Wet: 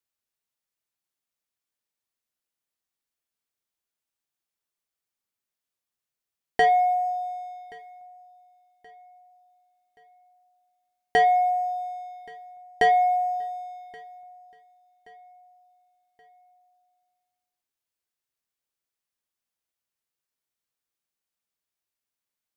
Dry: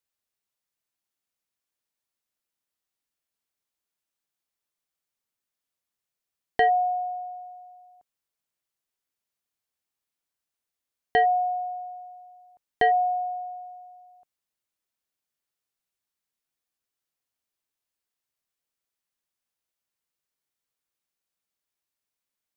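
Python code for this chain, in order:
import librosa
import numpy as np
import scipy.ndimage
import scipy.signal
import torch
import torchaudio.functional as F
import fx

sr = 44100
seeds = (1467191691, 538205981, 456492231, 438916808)

p1 = fx.lowpass(x, sr, hz=1800.0, slope=12, at=(6.65, 7.05), fade=0.02)
p2 = fx.leveller(p1, sr, passes=1)
p3 = p2 + fx.echo_feedback(p2, sr, ms=1126, feedback_pct=43, wet_db=-23.5, dry=0)
y = fx.rev_double_slope(p3, sr, seeds[0], early_s=0.37, late_s=2.1, knee_db=-26, drr_db=14.5)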